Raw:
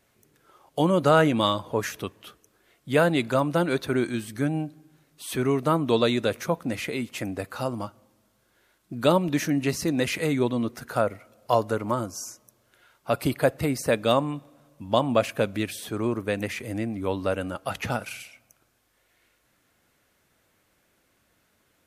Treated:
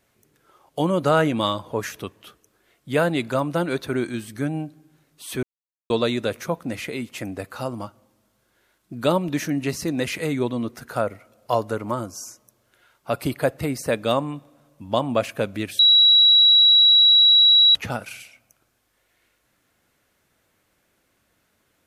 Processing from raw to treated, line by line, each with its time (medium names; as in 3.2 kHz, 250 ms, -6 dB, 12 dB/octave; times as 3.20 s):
5.43–5.90 s: mute
15.79–17.75 s: bleep 3.89 kHz -10.5 dBFS